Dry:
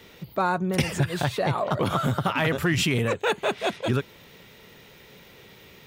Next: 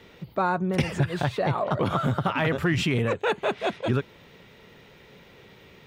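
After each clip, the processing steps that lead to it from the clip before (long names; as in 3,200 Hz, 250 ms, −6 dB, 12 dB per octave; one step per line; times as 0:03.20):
low-pass filter 2,800 Hz 6 dB per octave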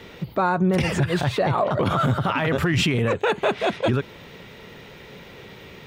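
brickwall limiter −21 dBFS, peak gain reduction 10.5 dB
level +8.5 dB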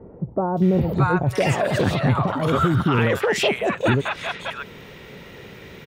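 three-band delay without the direct sound lows, highs, mids 570/620 ms, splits 850/4,000 Hz
level +2.5 dB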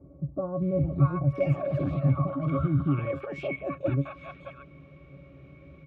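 resonances in every octave C#, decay 0.1 s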